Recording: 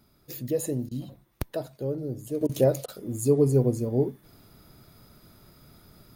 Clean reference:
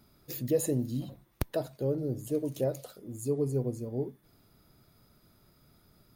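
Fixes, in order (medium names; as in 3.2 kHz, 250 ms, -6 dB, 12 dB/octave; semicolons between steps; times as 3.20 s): interpolate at 0.89/2.47/2.86 s, 21 ms; gain correction -9 dB, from 2.41 s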